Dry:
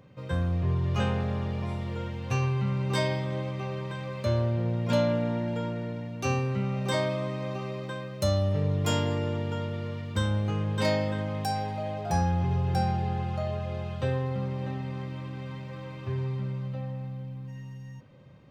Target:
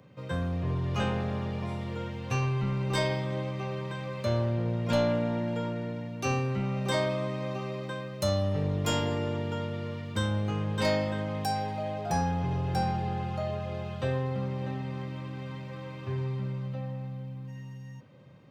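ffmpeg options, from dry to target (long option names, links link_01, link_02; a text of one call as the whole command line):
ffmpeg -i in.wav -filter_complex "[0:a]highpass=99,acrossover=split=640|1000[link_01][link_02][link_03];[link_01]aeval=exprs='clip(val(0),-1,0.0422)':channel_layout=same[link_04];[link_04][link_02][link_03]amix=inputs=3:normalize=0" out.wav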